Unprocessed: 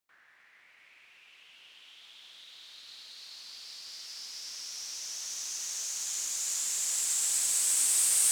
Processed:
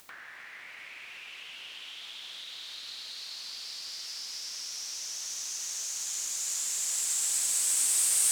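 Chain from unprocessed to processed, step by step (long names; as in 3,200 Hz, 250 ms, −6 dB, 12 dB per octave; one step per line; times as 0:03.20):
upward compression, threshold −33 dBFS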